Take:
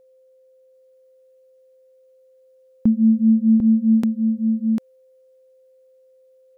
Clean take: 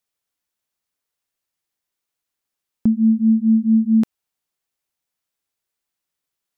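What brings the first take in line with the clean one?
band-stop 520 Hz, Q 30; inverse comb 747 ms -5 dB

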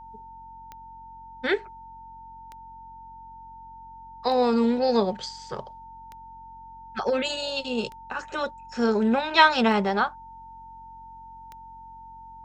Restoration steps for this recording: de-click; de-hum 45.2 Hz, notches 6; band-stop 900 Hz, Q 30

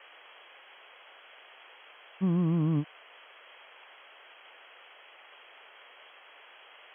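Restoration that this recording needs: noise print and reduce 21 dB

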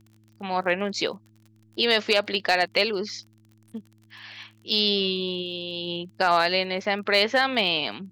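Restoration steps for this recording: clip repair -10 dBFS; de-click; de-hum 108.4 Hz, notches 3

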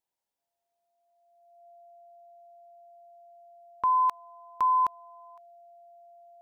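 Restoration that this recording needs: band-stop 690 Hz, Q 30; noise reduction 6 dB, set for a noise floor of -80 dBFS

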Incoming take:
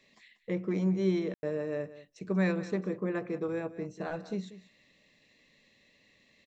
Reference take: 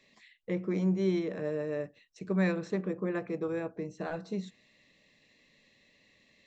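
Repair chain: room tone fill 1.34–1.43 s; inverse comb 188 ms -16 dB

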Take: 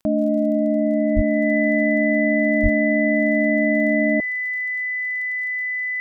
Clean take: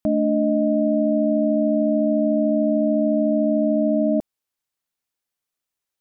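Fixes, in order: de-click; band-stop 2 kHz, Q 30; 1.15–1.27 s: high-pass 140 Hz 24 dB/octave; 2.62–2.74 s: high-pass 140 Hz 24 dB/octave

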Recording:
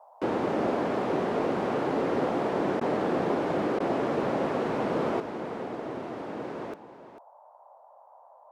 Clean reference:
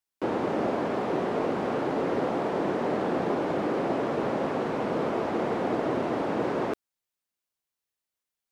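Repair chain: interpolate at 2.80/3.79 s, 10 ms; noise print and reduce 30 dB; inverse comb 446 ms -13 dB; trim 0 dB, from 5.20 s +8.5 dB

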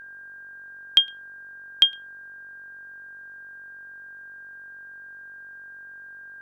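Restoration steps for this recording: de-hum 47 Hz, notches 29; band-stop 1.6 kHz, Q 30

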